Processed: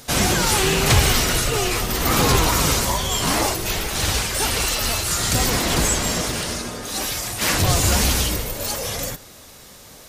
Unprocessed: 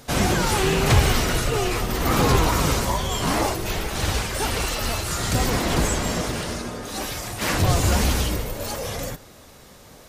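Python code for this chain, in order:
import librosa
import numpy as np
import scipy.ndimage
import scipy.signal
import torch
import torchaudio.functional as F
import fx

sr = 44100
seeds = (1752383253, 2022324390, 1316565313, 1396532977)

y = fx.high_shelf(x, sr, hz=2400.0, db=8.0)
y = fx.quant_dither(y, sr, seeds[0], bits=12, dither='none')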